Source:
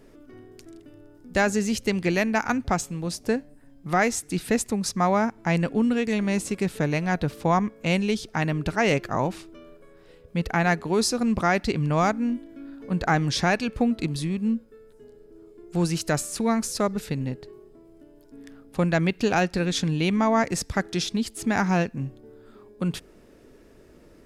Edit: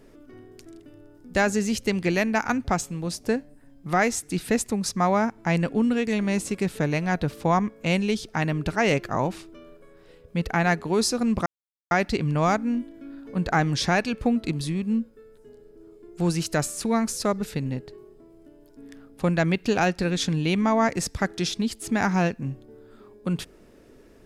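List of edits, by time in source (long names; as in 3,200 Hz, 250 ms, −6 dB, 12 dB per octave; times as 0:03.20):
0:11.46: splice in silence 0.45 s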